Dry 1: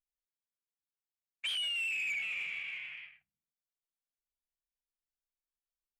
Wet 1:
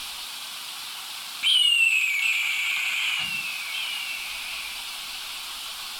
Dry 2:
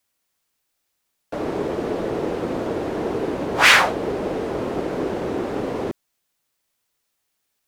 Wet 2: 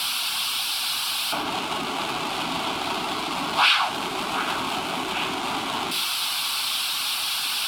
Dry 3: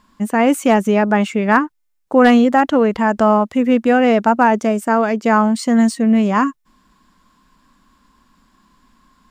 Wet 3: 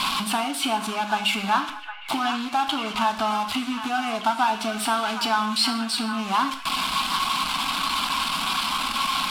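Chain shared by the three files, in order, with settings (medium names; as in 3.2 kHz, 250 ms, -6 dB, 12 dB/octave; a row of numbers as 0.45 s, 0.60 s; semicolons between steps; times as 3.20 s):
jump at every zero crossing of -18 dBFS; compression 6:1, threshold -17 dBFS; peaking EQ 750 Hz +4 dB 0.37 oct; static phaser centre 1.9 kHz, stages 6; reverb removal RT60 0.53 s; hysteresis with a dead band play -33.5 dBFS; low-pass 5.8 kHz 12 dB/octave; tilt EQ +4 dB/octave; on a send: repeats whose band climbs or falls 760 ms, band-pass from 1.4 kHz, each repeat 0.7 oct, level -7.5 dB; on the sum: gated-style reverb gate 230 ms falling, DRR 5 dB; normalise loudness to -24 LUFS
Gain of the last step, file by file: -3.0 dB, +0.5 dB, +1.5 dB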